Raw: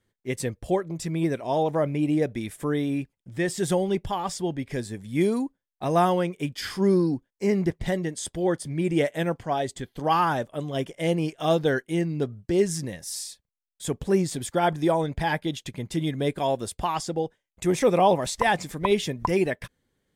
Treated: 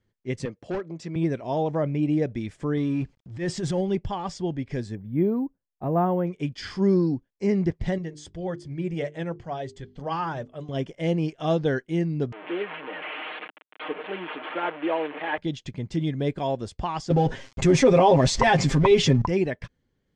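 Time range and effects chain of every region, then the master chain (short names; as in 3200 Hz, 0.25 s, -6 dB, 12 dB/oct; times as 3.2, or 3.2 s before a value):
0.45–1.16 HPF 230 Hz + high shelf 7000 Hz -6 dB + overloaded stage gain 24 dB
2.77–3.81 G.711 law mismatch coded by mu + transient shaper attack -10 dB, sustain +5 dB
4.95–6.27 LPF 1200 Hz + careless resampling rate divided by 3×, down filtered, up zero stuff
7.98–10.69 notches 50/100/150/200/250/300/350/400/450 Hz + flange 2 Hz, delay 1.4 ms, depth 1 ms, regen -60%
12.32–15.38 delta modulation 16 kbps, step -25 dBFS + Bessel high-pass 460 Hz, order 6 + comb 6.5 ms, depth 68%
17.1–19.22 G.711 law mismatch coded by mu + comb 7.5 ms, depth 84% + fast leveller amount 50%
whole clip: LPF 6400 Hz 24 dB/oct; low shelf 290 Hz +7 dB; notch 3700 Hz, Q 19; gain -3.5 dB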